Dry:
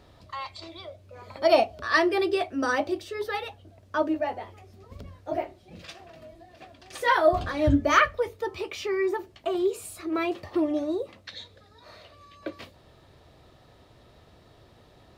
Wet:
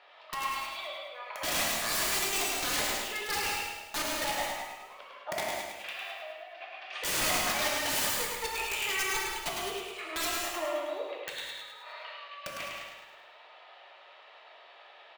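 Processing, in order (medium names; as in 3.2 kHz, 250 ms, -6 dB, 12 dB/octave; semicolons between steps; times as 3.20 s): high-pass 630 Hz 24 dB/octave; in parallel at +3 dB: compression 5:1, threshold -41 dBFS, peak gain reduction 23.5 dB; on the sum: saturation -14 dBFS, distortion -16 dB; resonant low-pass 2.7 kHz, resonance Q 2.1; integer overflow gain 21.5 dB; on a send: feedback delay 105 ms, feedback 52%, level -4.5 dB; on the sum: gated-style reverb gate 240 ms flat, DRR -1.5 dB; trim -7 dB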